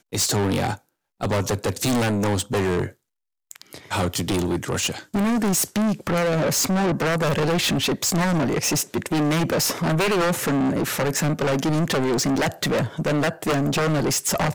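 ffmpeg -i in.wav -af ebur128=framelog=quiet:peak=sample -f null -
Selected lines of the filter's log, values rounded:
Integrated loudness:
  I:         -22.2 LUFS
  Threshold: -32.4 LUFS
Loudness range:
  LRA:         3.6 LU
  Threshold: -42.4 LUFS
  LRA low:   -24.9 LUFS
  LRA high:  -21.2 LUFS
Sample peak:
  Peak:      -18.6 dBFS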